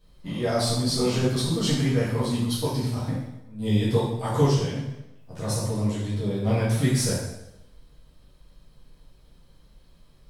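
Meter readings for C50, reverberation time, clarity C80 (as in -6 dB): 1.0 dB, 0.90 s, 4.5 dB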